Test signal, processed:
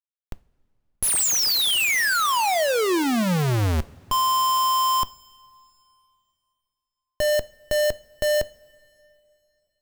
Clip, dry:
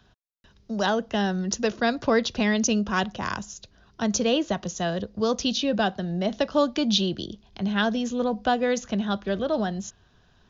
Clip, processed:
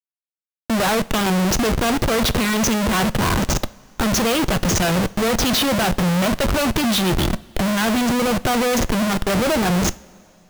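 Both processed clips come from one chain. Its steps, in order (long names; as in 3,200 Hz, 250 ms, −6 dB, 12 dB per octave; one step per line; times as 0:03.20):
comparator with hysteresis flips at −36 dBFS
coupled-rooms reverb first 0.34 s, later 3 s, from −18 dB, DRR 15 dB
level +8 dB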